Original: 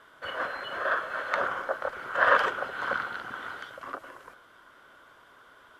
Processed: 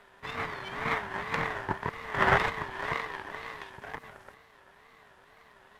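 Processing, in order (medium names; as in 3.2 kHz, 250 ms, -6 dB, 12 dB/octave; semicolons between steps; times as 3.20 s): partial rectifier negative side -7 dB; ring modulator 420 Hz; wow and flutter 150 cents; trim +3 dB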